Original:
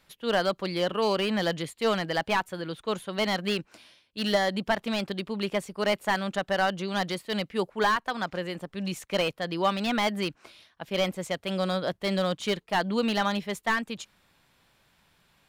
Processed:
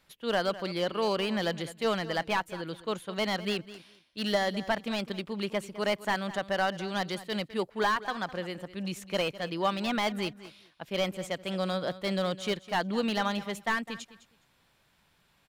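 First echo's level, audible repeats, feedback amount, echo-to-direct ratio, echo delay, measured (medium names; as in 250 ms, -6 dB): -16.0 dB, 2, 16%, -16.0 dB, 207 ms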